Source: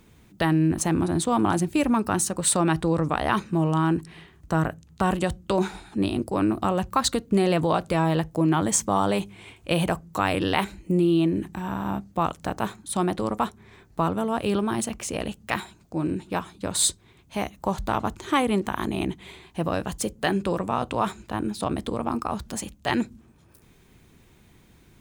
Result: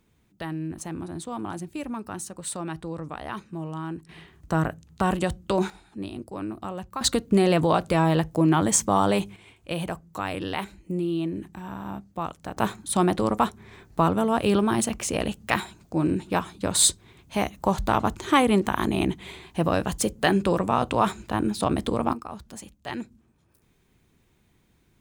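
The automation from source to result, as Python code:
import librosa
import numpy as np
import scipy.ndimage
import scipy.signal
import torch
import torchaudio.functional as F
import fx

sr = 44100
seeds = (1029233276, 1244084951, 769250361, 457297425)

y = fx.gain(x, sr, db=fx.steps((0.0, -11.0), (4.09, -0.5), (5.7, -10.0), (7.01, 1.5), (9.36, -6.5), (12.57, 3.0), (22.13, -9.0)))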